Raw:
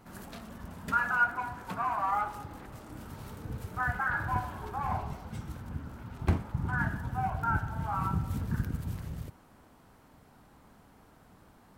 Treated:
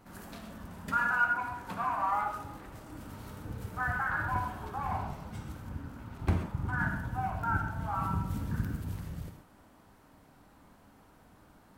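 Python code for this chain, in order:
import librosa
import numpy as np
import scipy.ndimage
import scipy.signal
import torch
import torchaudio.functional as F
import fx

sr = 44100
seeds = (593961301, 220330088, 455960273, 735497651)

y = fx.rev_gated(x, sr, seeds[0], gate_ms=160, shape='flat', drr_db=4.0)
y = y * librosa.db_to_amplitude(-2.0)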